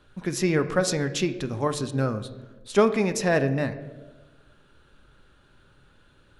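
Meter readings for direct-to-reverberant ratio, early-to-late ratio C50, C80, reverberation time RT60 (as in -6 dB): 9.0 dB, 12.5 dB, 15.0 dB, 1.3 s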